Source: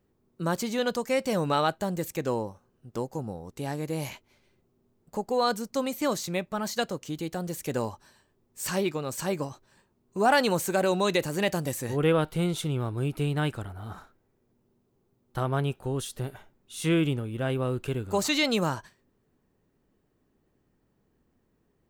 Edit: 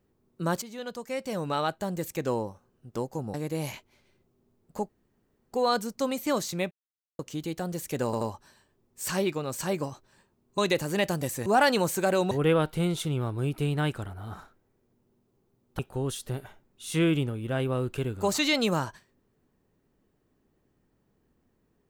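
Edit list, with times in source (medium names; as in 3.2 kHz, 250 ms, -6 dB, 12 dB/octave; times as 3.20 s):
0.62–2.30 s: fade in, from -13.5 dB
3.34–3.72 s: delete
5.27 s: insert room tone 0.63 s
6.46–6.94 s: mute
7.80 s: stutter 0.08 s, 3 plays
10.17–11.02 s: move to 11.90 s
15.38–15.69 s: delete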